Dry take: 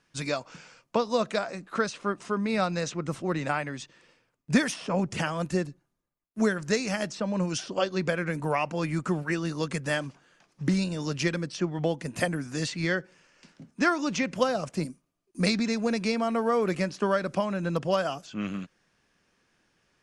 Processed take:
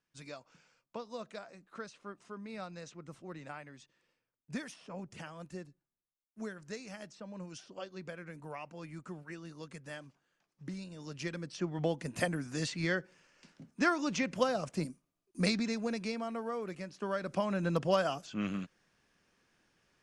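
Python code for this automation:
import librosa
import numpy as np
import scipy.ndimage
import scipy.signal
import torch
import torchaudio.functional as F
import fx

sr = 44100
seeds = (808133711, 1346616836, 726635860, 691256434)

y = fx.gain(x, sr, db=fx.line((10.84, -17.0), (11.8, -5.0), (15.44, -5.0), (16.83, -15.0), (17.53, -3.0)))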